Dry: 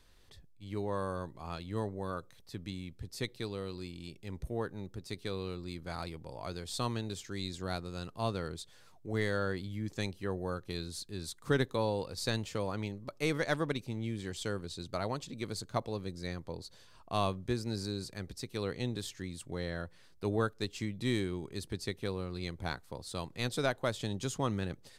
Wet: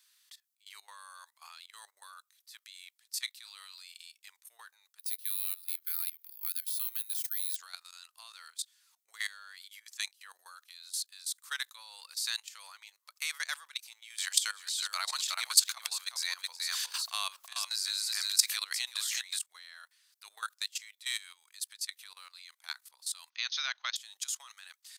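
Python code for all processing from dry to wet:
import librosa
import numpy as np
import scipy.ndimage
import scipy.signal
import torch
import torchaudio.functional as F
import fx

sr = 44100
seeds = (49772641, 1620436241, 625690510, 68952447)

y = fx.chain(x, sr, fx.highpass(hz=430.0, slope=12),
    fx.doubler(ms=30.0, db=-14.0), at=(3.1, 4.29))
y = fx.chain(y, sr, fx.bessel_highpass(hz=1800.0, order=2),
    fx.high_shelf(hz=8600.0, db=-8.0),
    fx.resample_bad(factor=3, down='filtered', up='zero_stuff'), at=(4.99, 7.56))
y = fx.chain(y, sr, fx.echo_single(ms=368, db=-7.5),
    fx.env_flatten(amount_pct=100), at=(14.1, 19.39))
y = fx.chain(y, sr, fx.brickwall_bandpass(low_hz=350.0, high_hz=6600.0),
    fx.peak_eq(hz=2700.0, db=5.5, octaves=2.3), at=(23.3, 23.96))
y = scipy.signal.sosfilt(scipy.signal.butter(4, 1100.0, 'highpass', fs=sr, output='sos'), y)
y = fx.tilt_eq(y, sr, slope=4.5)
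y = fx.level_steps(y, sr, step_db=17)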